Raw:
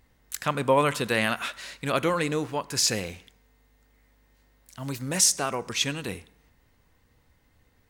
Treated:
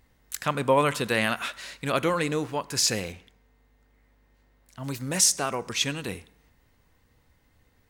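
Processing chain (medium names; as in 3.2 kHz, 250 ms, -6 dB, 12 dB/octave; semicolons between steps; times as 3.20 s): 3.12–4.84 s: treble shelf 3.6 kHz -8.5 dB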